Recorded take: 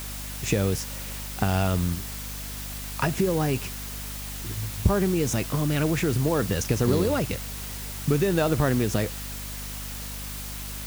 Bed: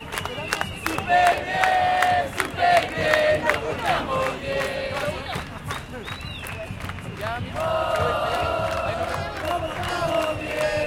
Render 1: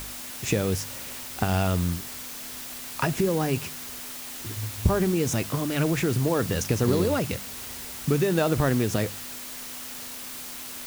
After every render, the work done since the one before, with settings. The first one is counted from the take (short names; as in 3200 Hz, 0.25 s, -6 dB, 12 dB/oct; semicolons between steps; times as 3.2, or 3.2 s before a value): de-hum 50 Hz, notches 4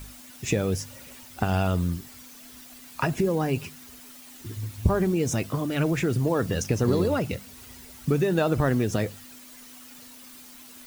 denoiser 11 dB, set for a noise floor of -38 dBFS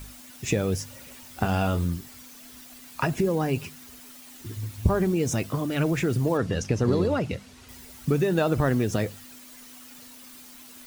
1.22–1.85 doubler 25 ms -7.5 dB; 6.37–7.69 air absorption 56 m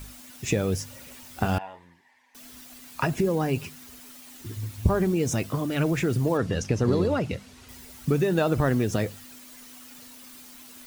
1.58–2.35 double band-pass 1300 Hz, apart 0.98 oct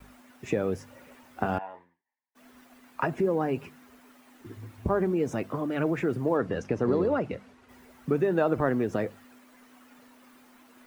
expander -45 dBFS; three-band isolator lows -12 dB, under 210 Hz, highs -17 dB, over 2100 Hz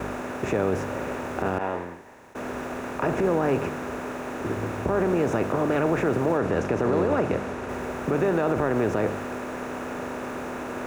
per-bin compression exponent 0.4; limiter -13.5 dBFS, peak gain reduction 7.5 dB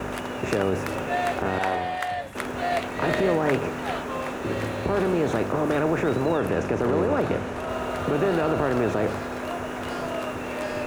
add bed -9 dB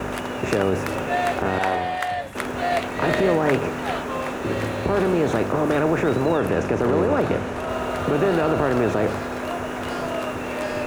gain +3 dB